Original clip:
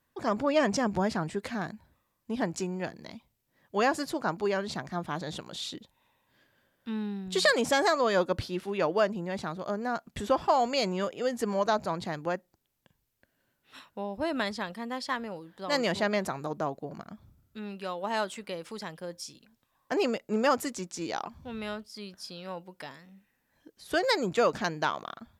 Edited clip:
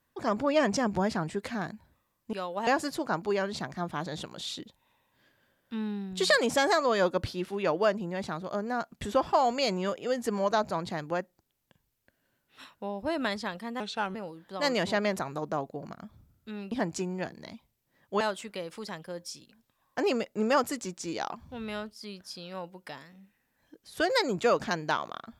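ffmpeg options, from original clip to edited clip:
-filter_complex "[0:a]asplit=7[a][b][c][d][e][f][g];[a]atrim=end=2.332[h];[b]atrim=start=17.798:end=18.142[i];[c]atrim=start=3.818:end=14.954[j];[d]atrim=start=14.95:end=15.23,asetpts=PTS-STARTPTS,asetrate=35721,aresample=44100,atrim=end_sample=15244,asetpts=PTS-STARTPTS[k];[e]atrim=start=15.226:end=17.802[l];[f]atrim=start=2.328:end=3.822[m];[g]atrim=start=18.138[n];[h][i]acrossfade=d=0.004:c1=hsin:c2=hsin[o];[o][j]acrossfade=d=0.004:c1=hsin:c2=hsin[p];[p][k]acrossfade=d=0.004:c1=hsin:c2=hsin[q];[q][l]acrossfade=d=0.004:c1=hsin:c2=hsin[r];[r][m]acrossfade=d=0.004:c1=hsin:c2=hsin[s];[s][n]acrossfade=d=0.004:c1=hsin:c2=hsin"

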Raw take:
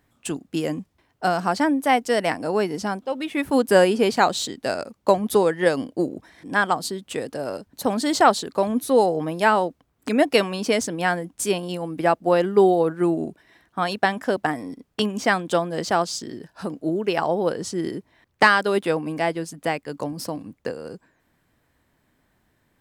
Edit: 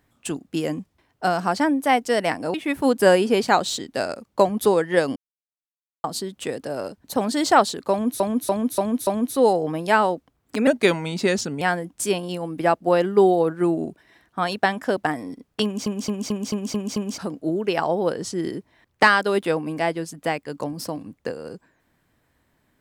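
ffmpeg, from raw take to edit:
-filter_complex "[0:a]asplit=17[a][b][c][d][e][f][g][h][i][j][k][l][m][n][o][p][q];[a]atrim=end=2.542[r];[b]atrim=start=3.228:end=5.85,asetpts=PTS-STARTPTS,afade=t=out:st=2.618:d=0.004:c=hsin[s];[c]atrim=start=5.85:end=6.73,asetpts=PTS-STARTPTS,volume=0[t];[d]atrim=start=6.73:end=8.892,asetpts=PTS-STARTPTS,afade=t=in:d=0.004:c=hsin[u];[e]atrim=start=8.598:end=8.892[v];[f]atrim=start=8.598:end=8.892[w];[g]atrim=start=8.598:end=8.892[x];[h]atrim=start=8.598:end=10.204[y];[i]atrim=start=10.2:end=11.01,asetpts=PTS-STARTPTS,asetrate=37926,aresample=44100,atrim=end_sample=41536,asetpts=PTS-STARTPTS[z];[j]atrim=start=11.006:end=15.262[aa];[k]atrim=start=15.038:end=15.262[ab];[l]atrim=start=15.038:end=15.262[ac];[m]atrim=start=15.038:end=15.262[ad];[n]atrim=start=15.038:end=15.262[ae];[o]atrim=start=15.038:end=15.262[af];[p]atrim=start=15.038:end=15.262[ag];[q]atrim=start=16.578[ah];[s][t][u]concat=n=3:v=0:a=1[ai];[r][ai]acrossfade=d=0.004:c1=hsin:c2=hsin[aj];[aj][v]acrossfade=d=0.004:c1=hsin:c2=hsin[ak];[ak][w]acrossfade=d=0.004:c1=hsin:c2=hsin[al];[al][x]acrossfade=d=0.004:c1=hsin:c2=hsin[am];[am][y]acrossfade=d=0.004:c1=hsin:c2=hsin[an];[an][z]acrossfade=d=0.004:c1=hsin:c2=hsin[ao];[ao][aa]acrossfade=d=0.004:c1=hsin:c2=hsin[ap];[ap][ab]acrossfade=d=0.004:c1=hsin:c2=hsin[aq];[aq][ac]acrossfade=d=0.004:c1=hsin:c2=hsin[ar];[ar][ad]acrossfade=d=0.004:c1=hsin:c2=hsin[as];[as][ae]acrossfade=d=0.004:c1=hsin:c2=hsin[at];[at][af]acrossfade=d=0.004:c1=hsin:c2=hsin[au];[au][ag]acrossfade=d=0.004:c1=hsin:c2=hsin[av];[av][ah]acrossfade=d=0.004:c1=hsin:c2=hsin"

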